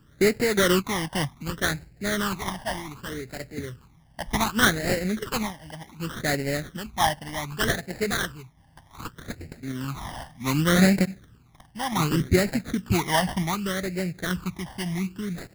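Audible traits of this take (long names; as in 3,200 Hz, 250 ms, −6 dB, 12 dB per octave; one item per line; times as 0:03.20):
aliases and images of a low sample rate 2,500 Hz, jitter 20%
phaser sweep stages 12, 0.66 Hz, lowest notch 410–1,100 Hz
sample-and-hold tremolo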